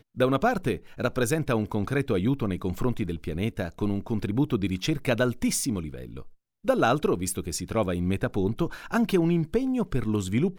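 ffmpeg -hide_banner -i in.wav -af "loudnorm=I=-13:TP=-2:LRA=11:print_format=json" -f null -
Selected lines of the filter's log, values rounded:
"input_i" : "-26.9",
"input_tp" : "-10.9",
"input_lra" : "1.5",
"input_thresh" : "-37.1",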